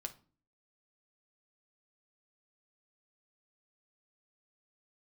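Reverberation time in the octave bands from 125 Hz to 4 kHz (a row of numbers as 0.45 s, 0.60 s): 0.60 s, 0.60 s, 0.40 s, 0.35 s, 0.30 s, 0.30 s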